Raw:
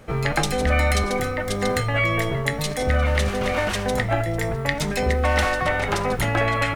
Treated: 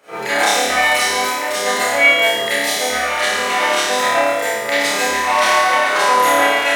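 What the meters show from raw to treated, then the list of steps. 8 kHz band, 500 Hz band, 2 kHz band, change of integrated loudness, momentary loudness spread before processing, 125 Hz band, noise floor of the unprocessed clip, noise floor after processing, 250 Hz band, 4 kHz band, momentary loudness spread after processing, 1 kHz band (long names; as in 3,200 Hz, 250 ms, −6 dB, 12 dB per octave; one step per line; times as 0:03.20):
+11.5 dB, +5.0 dB, +9.5 dB, +7.5 dB, 4 LU, below −20 dB, −28 dBFS, −23 dBFS, −2.0 dB, +12.0 dB, 6 LU, +10.0 dB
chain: high-pass filter 520 Hz 12 dB per octave
on a send: flutter between parallel walls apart 4.8 metres, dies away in 1.2 s
on the sum: four-comb reverb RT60 0.33 s, combs from 31 ms, DRR −9.5 dB
level −4 dB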